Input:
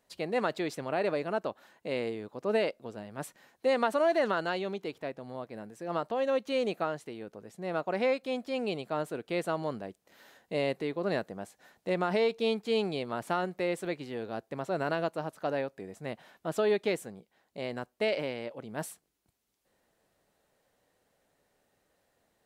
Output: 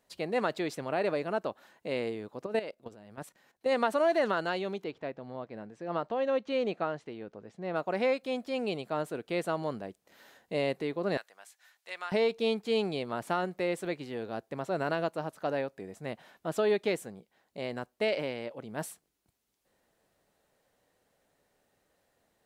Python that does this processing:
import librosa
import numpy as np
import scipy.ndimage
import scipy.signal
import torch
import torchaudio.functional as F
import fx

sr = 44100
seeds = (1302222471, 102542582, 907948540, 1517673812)

y = fx.level_steps(x, sr, step_db=13, at=(2.46, 3.72))
y = fx.air_absorb(y, sr, metres=120.0, at=(4.84, 7.76))
y = fx.highpass(y, sr, hz=1500.0, slope=12, at=(11.17, 12.12))